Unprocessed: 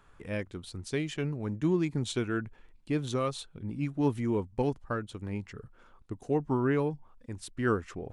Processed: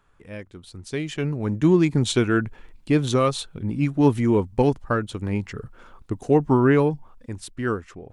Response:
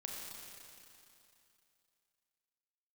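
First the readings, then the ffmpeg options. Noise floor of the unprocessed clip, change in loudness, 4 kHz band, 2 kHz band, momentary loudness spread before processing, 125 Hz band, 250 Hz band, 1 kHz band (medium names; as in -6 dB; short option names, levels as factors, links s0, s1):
-60 dBFS, +10.0 dB, +9.5 dB, +8.5 dB, 14 LU, +9.5 dB, +9.5 dB, +9.5 dB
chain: -af "dynaudnorm=f=270:g=9:m=5.96,volume=0.708"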